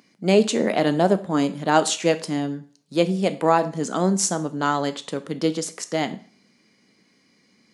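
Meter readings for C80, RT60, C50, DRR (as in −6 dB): 20.5 dB, 0.45 s, 16.0 dB, 10.5 dB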